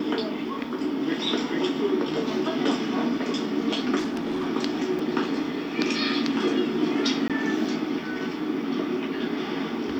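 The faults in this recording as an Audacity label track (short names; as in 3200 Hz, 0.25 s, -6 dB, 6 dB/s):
3.980000	4.490000	clipped -24 dBFS
4.990000	4.990000	gap 3 ms
7.280000	7.300000	gap 17 ms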